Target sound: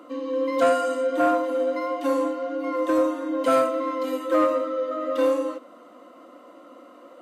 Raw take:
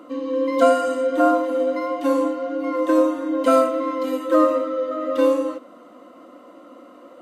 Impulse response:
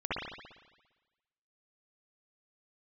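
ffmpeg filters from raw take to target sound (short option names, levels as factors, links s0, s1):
-af "acontrast=76,highpass=f=290:p=1,volume=0.398"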